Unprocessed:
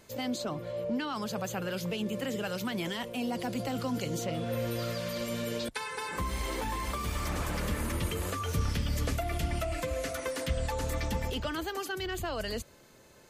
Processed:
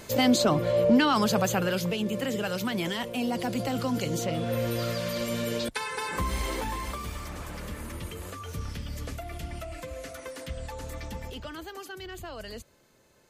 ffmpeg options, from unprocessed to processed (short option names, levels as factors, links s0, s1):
-af "volume=3.98,afade=t=out:st=1.07:d=0.89:silence=0.398107,afade=t=out:st=6.34:d=0.94:silence=0.334965"